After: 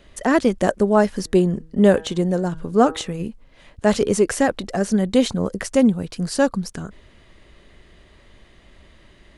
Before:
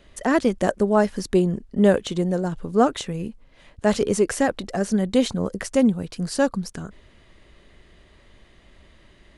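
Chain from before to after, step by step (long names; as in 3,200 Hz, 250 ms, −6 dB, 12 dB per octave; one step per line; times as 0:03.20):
0:01.18–0:03.23: hum removal 160 Hz, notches 12
level +2.5 dB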